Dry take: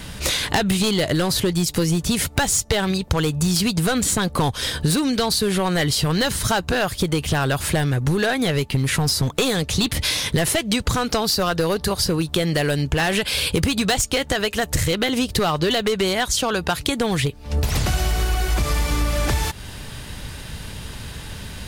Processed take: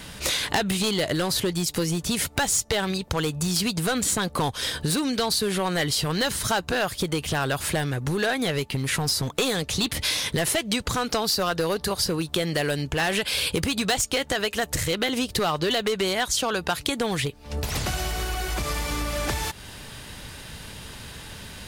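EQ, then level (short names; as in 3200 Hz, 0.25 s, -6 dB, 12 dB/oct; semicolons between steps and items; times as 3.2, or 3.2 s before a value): low shelf 170 Hz -7.5 dB; -3.0 dB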